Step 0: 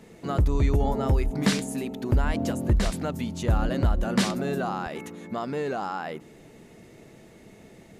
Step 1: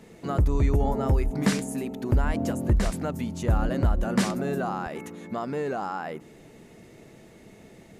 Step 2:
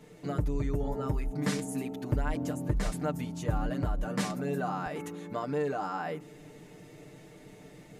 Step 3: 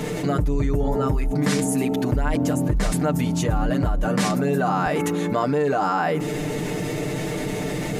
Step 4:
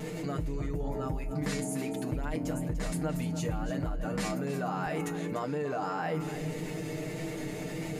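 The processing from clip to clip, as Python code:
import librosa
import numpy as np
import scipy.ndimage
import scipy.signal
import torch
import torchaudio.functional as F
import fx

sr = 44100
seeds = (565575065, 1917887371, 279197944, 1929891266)

y1 = fx.dynamic_eq(x, sr, hz=3700.0, q=1.3, threshold_db=-50.0, ratio=4.0, max_db=-6)
y2 = y1 + 0.83 * np.pad(y1, (int(6.7 * sr / 1000.0), 0))[:len(y1)]
y2 = fx.rider(y2, sr, range_db=4, speed_s=0.5)
y2 = fx.quant_float(y2, sr, bits=8)
y2 = F.gain(torch.from_numpy(y2), -7.0).numpy()
y3 = fx.env_flatten(y2, sr, amount_pct=70)
y3 = F.gain(torch.from_numpy(y3), 5.5).numpy()
y4 = fx.comb_fb(y3, sr, f0_hz=160.0, decay_s=0.2, harmonics='all', damping=0.0, mix_pct=70)
y4 = fx.vibrato(y4, sr, rate_hz=1.7, depth_cents=27.0)
y4 = y4 + 10.0 ** (-12.0 / 20.0) * np.pad(y4, (int(294 * sr / 1000.0), 0))[:len(y4)]
y4 = F.gain(torch.from_numpy(y4), -4.5).numpy()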